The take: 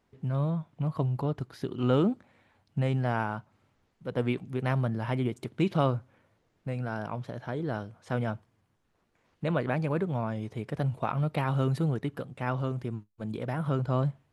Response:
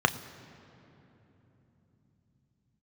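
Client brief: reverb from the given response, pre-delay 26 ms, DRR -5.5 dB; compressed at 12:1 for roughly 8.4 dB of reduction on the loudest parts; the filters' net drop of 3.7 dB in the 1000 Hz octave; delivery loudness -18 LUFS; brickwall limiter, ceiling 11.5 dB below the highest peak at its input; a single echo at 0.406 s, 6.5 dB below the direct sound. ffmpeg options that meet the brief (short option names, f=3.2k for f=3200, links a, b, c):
-filter_complex "[0:a]equalizer=f=1k:t=o:g=-5,acompressor=threshold=-29dB:ratio=12,alimiter=level_in=7dB:limit=-24dB:level=0:latency=1,volume=-7dB,aecho=1:1:406:0.473,asplit=2[a][b];[1:a]atrim=start_sample=2205,adelay=26[c];[b][c]afir=irnorm=-1:irlink=0,volume=-8dB[d];[a][d]amix=inputs=2:normalize=0,volume=12.5dB"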